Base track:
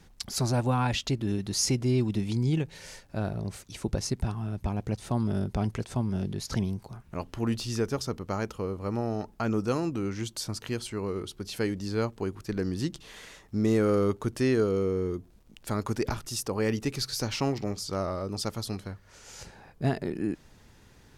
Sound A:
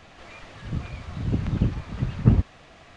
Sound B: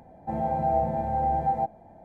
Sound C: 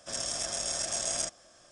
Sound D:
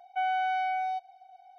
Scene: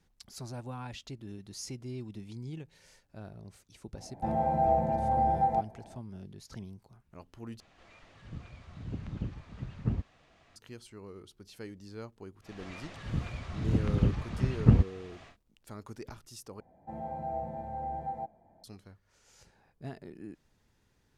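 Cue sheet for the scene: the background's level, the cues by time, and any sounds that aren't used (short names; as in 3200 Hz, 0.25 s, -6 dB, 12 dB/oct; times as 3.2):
base track -15 dB
3.95 add B -1.5 dB
7.6 replace with A -13.5 dB
12.41 add A -3 dB, fades 0.10 s
16.6 replace with B -11.5 dB
not used: C, D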